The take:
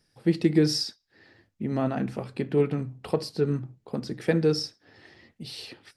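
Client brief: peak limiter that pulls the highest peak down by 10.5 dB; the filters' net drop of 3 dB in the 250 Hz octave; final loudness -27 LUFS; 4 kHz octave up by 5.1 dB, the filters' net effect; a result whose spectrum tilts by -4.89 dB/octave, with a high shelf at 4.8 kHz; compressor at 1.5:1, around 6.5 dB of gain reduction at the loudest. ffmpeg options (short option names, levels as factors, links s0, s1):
-af "equalizer=f=250:t=o:g=-4.5,equalizer=f=4000:t=o:g=4,highshelf=f=4800:g=4.5,acompressor=threshold=0.0141:ratio=1.5,volume=3.35,alimiter=limit=0.158:level=0:latency=1"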